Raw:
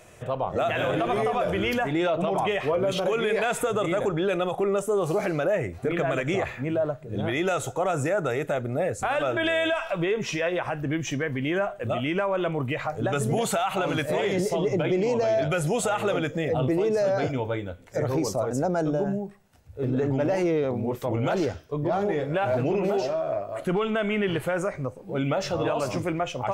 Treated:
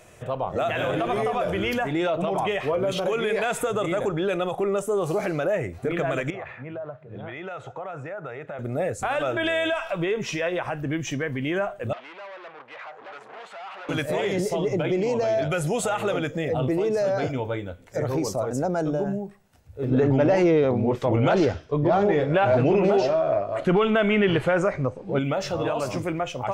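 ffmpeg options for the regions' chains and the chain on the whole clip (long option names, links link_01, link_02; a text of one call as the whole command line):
ffmpeg -i in.wav -filter_complex "[0:a]asettb=1/sr,asplit=3[link_01][link_02][link_03];[link_01]atrim=end=6.304[link_04];[link_02]atrim=start=6.3:end=8.59,asetpts=PTS-STARTPTS,afade=type=in:duration=0.004:curve=qsin,afade=type=out:start_time=2.286:duration=0.004:curve=qsin,equalizer=frequency=280:width_type=o:width=1.6:gain=-9,acompressor=threshold=-31dB:ratio=4:attack=3.2:release=140:knee=1:detection=peak,highpass=120,lowpass=2200[link_05];[link_03]atrim=start=8.586[link_06];[link_04][link_05]acrossfade=duration=0.004:curve1=hsin:curve2=qsin[link_07];[link_07][link_06]acrossfade=duration=0.004:curve1=qsin:curve2=hsin,asettb=1/sr,asplit=3[link_08][link_09][link_10];[link_08]atrim=end=11.934[link_11];[link_09]atrim=start=11.93:end=13.89,asetpts=PTS-STARTPTS,afade=type=in:duration=0.004:curve=qsin,afade=type=out:start_time=1.956:duration=0.004:curve=qsin,asoftclip=type=hard:threshold=-33.5dB,highpass=740,lowpass=2400[link_12];[link_10]atrim=start=13.886[link_13];[link_11][link_12]acrossfade=duration=0.004:curve1=hsin:curve2=qsin[link_14];[link_14][link_13]acrossfade=duration=0.004:curve1=qsin:curve2=hsin,asettb=1/sr,asplit=3[link_15][link_16][link_17];[link_15]atrim=end=19.914[link_18];[link_16]atrim=start=19.91:end=25.19,asetpts=PTS-STARTPTS,afade=type=in:duration=0.004:curve=qsin,afade=type=out:start_time=5.276:duration=0.004:curve=qsin,lowpass=5400,acontrast=30[link_19];[link_17]atrim=start=25.186[link_20];[link_18][link_19]acrossfade=duration=0.004:curve1=hsin:curve2=qsin[link_21];[link_21][link_20]acrossfade=duration=0.004:curve1=qsin:curve2=hsin" out.wav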